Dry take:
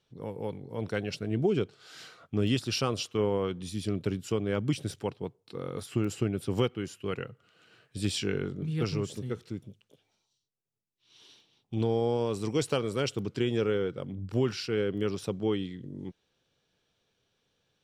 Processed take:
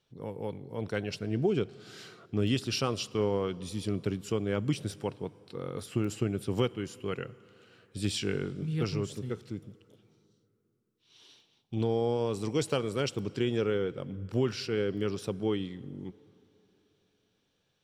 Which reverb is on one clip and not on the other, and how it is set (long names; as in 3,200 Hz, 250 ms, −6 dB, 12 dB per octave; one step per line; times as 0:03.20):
dense smooth reverb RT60 3.2 s, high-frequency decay 0.65×, DRR 19.5 dB
level −1 dB